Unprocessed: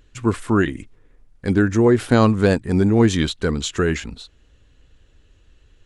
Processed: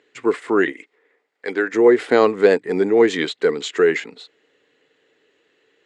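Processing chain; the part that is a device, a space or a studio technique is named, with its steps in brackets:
0:00.72–0:01.74: meter weighting curve A
television speaker (loudspeaker in its box 220–7,400 Hz, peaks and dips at 220 Hz −8 dB, 440 Hz +10 dB, 780 Hz +3 dB, 2,000 Hz +10 dB, 5,900 Hz −7 dB)
level −1 dB

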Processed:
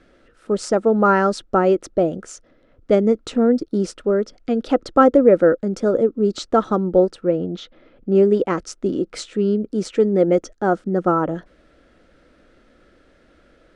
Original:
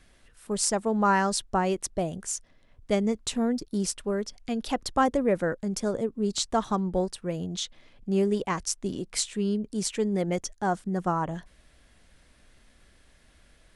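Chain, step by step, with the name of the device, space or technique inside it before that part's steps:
0:07.24–0:08.15: Bessel low-pass filter 3,300 Hz, order 2
inside a cardboard box (low-pass filter 5,600 Hz 12 dB per octave; hollow resonant body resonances 330/490/1,300 Hz, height 15 dB, ringing for 20 ms)
level −1 dB

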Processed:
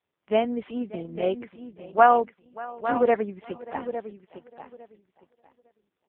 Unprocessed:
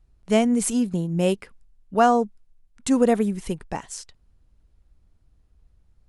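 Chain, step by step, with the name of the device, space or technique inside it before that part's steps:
Butterworth low-pass 4,000 Hz 72 dB per octave
repeating echo 856 ms, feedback 18%, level −10 dB
0:01.97–0:03.40: dynamic equaliser 1,700 Hz, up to +6 dB, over −34 dBFS, Q 0.86
satellite phone (band-pass filter 390–3,200 Hz; single-tap delay 587 ms −19.5 dB; AMR narrowband 4.75 kbit/s 8,000 Hz)

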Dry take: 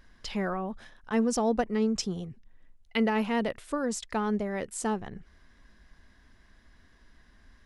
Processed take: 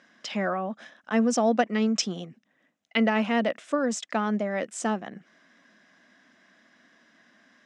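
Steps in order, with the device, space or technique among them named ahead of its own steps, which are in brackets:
0:01.51–0:02.26: parametric band 3,100 Hz +5 dB 1.9 octaves
television speaker (loudspeaker in its box 210–7,300 Hz, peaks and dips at 410 Hz −9 dB, 630 Hz +4 dB, 930 Hz −6 dB, 4,400 Hz −7 dB)
level +5.5 dB

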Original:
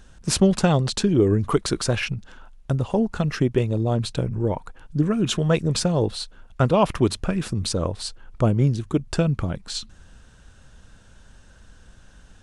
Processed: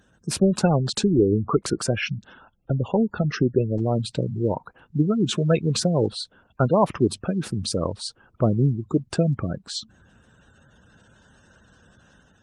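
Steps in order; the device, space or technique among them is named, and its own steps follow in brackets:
0:01.54–0:02.00: dynamic equaliser 3,900 Hz, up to −7 dB, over −46 dBFS, Q 2.3
noise-suppressed video call (high-pass filter 110 Hz 12 dB per octave; gate on every frequency bin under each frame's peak −20 dB strong; automatic gain control gain up to 4 dB; level −3 dB; Opus 24 kbit/s 48,000 Hz)

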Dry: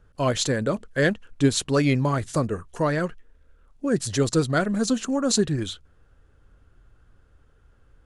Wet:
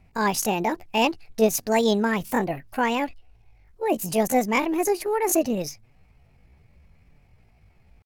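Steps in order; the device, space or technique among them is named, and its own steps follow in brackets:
0:04.48–0:05.34: low-pass filter 9,600 Hz 24 dB per octave
chipmunk voice (pitch shifter +8 semitones)

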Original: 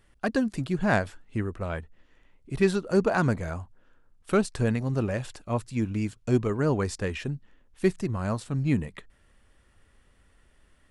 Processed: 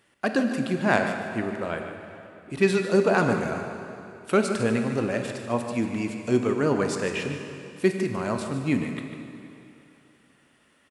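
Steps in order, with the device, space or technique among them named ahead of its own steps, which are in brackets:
PA in a hall (high-pass filter 190 Hz 12 dB per octave; parametric band 2,700 Hz +3 dB 0.59 octaves; single-tap delay 149 ms −11.5 dB; convolution reverb RT60 2.9 s, pre-delay 16 ms, DRR 5.5 dB)
level +2.5 dB

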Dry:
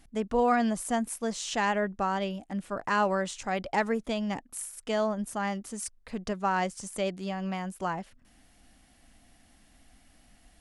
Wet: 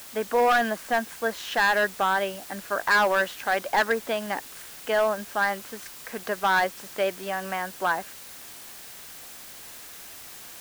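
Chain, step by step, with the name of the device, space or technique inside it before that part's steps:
drive-through speaker (band-pass filter 430–2,900 Hz; parametric band 1,600 Hz +10 dB 0.27 octaves; hard clipping −23 dBFS, distortion −11 dB; white noise bed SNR 16 dB)
level +7 dB

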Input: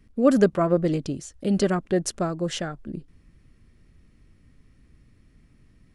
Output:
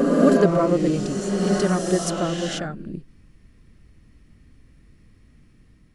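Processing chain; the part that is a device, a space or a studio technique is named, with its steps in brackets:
reverse reverb (reversed playback; convolution reverb RT60 2.9 s, pre-delay 20 ms, DRR −1.5 dB; reversed playback)

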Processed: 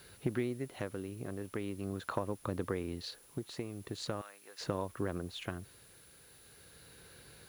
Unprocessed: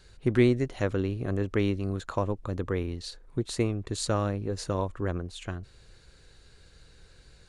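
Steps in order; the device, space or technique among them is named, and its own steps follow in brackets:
medium wave at night (band-pass filter 120–4,200 Hz; downward compressor, threshold −34 dBFS, peak gain reduction 16.5 dB; amplitude tremolo 0.41 Hz, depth 51%; steady tone 10,000 Hz −64 dBFS; white noise bed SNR 24 dB)
0:04.21–0:04.61: high-pass filter 1,300 Hz 12 dB per octave
level +3 dB

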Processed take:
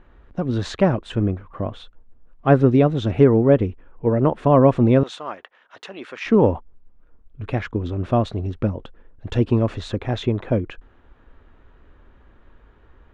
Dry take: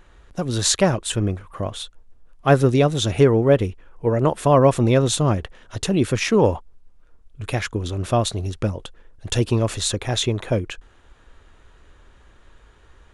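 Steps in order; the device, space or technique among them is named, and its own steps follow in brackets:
phone in a pocket (low-pass filter 3,100 Hz 12 dB per octave; parametric band 250 Hz +5 dB 0.63 octaves; high-shelf EQ 2,200 Hz −8 dB)
0:05.03–0:06.26: high-pass filter 940 Hz 12 dB per octave

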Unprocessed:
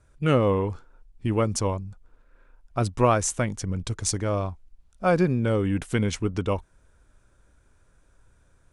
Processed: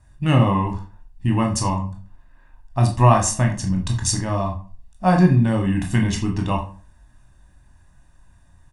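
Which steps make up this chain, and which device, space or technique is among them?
microphone above a desk (comb filter 1.1 ms, depth 84%; convolution reverb RT60 0.40 s, pre-delay 16 ms, DRR 1.5 dB)
level +1 dB

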